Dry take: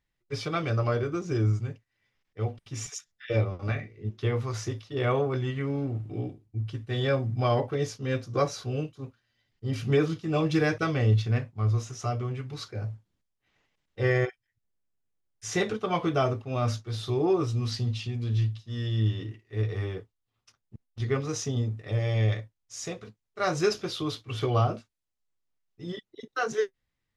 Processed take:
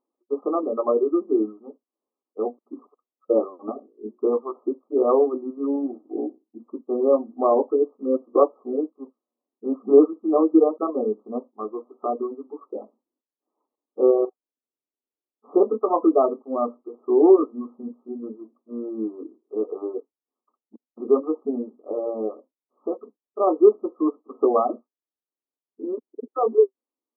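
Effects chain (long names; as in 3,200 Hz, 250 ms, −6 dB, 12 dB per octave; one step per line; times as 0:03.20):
reverb reduction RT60 1.8 s
linear-phase brick-wall band-pass 220–1,300 Hz
parametric band 360 Hz +7.5 dB 1.8 octaves
level +4.5 dB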